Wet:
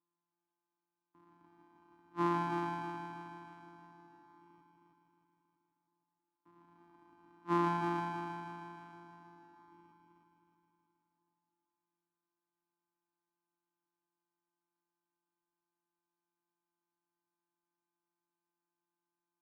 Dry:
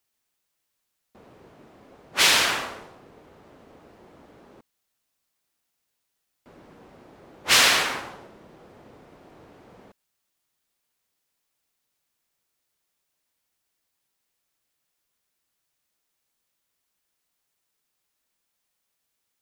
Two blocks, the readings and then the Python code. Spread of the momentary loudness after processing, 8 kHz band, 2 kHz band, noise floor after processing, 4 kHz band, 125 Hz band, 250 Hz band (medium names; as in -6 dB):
22 LU, under -35 dB, -22.0 dB, under -85 dBFS, -34.5 dB, +2.5 dB, +3.0 dB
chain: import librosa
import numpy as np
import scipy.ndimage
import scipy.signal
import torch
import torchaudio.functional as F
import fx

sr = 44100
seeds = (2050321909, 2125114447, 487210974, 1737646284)

y = np.r_[np.sort(x[:len(x) // 256 * 256].reshape(-1, 256), axis=1).ravel(), x[len(x) // 256 * 256:]]
y = fx.double_bandpass(y, sr, hz=550.0, octaves=1.7)
y = fx.echo_heads(y, sr, ms=158, heads='first and second', feedback_pct=62, wet_db=-6)
y = y * 10.0 ** (-1.5 / 20.0)